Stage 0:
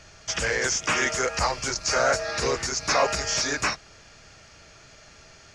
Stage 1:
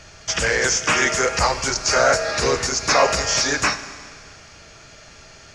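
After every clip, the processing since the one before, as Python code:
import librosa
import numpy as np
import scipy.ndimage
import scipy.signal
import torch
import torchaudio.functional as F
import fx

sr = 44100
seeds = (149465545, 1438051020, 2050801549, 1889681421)

y = fx.rev_schroeder(x, sr, rt60_s=1.9, comb_ms=33, drr_db=12.0)
y = F.gain(torch.from_numpy(y), 5.5).numpy()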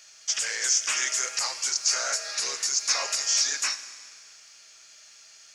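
y = np.diff(x, prepend=0.0)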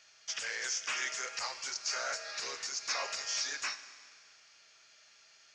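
y = scipy.ndimage.gaussian_filter1d(x, 1.6, mode='constant')
y = F.gain(torch.from_numpy(y), -4.5).numpy()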